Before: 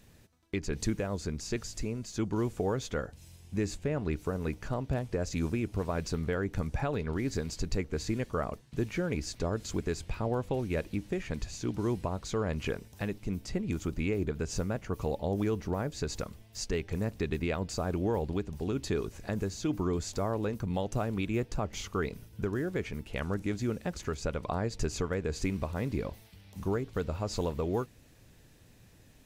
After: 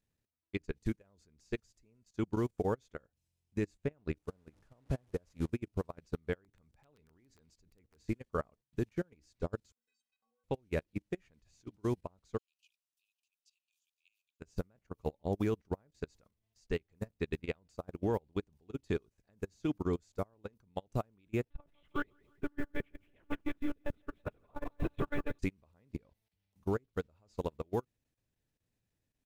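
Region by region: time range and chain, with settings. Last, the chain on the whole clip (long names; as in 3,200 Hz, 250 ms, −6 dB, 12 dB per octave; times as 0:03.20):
0:04.19–0:05.50: linear delta modulator 64 kbit/s, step −37.5 dBFS + high-shelf EQ 2,100 Hz −7.5 dB
0:06.44–0:08.03: hum removal 109.5 Hz, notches 3 + downward compressor 8 to 1, threshold −31 dBFS + wrap-around overflow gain 26.5 dB
0:09.72–0:10.44: meter weighting curve ITU-R 468 + output level in coarse steps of 19 dB + stiff-string resonator 230 Hz, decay 0.47 s, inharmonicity 0.03
0:12.38–0:14.40: Butterworth high-pass 2,500 Hz 96 dB per octave + single-tap delay 537 ms −20 dB
0:21.50–0:25.39: one-pitch LPC vocoder at 8 kHz 290 Hz + feedback echo at a low word length 167 ms, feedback 55%, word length 9 bits, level −6.5 dB
whole clip: output level in coarse steps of 15 dB; expander for the loud parts 2.5 to 1, over −46 dBFS; level +1.5 dB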